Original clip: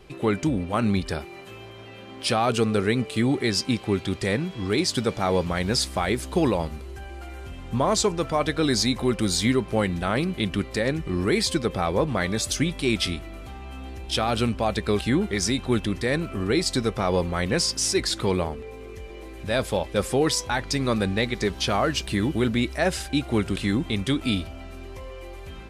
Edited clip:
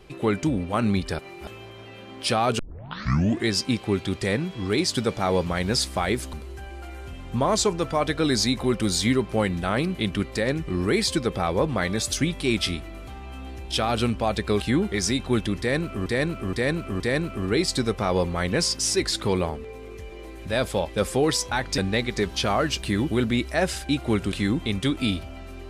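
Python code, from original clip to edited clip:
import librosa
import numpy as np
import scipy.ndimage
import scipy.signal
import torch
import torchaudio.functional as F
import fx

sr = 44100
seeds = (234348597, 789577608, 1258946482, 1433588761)

y = fx.edit(x, sr, fx.reverse_span(start_s=1.19, length_s=0.28),
    fx.tape_start(start_s=2.59, length_s=0.9),
    fx.cut(start_s=6.33, length_s=0.39),
    fx.repeat(start_s=15.98, length_s=0.47, count=4),
    fx.cut(start_s=20.76, length_s=0.26), tone=tone)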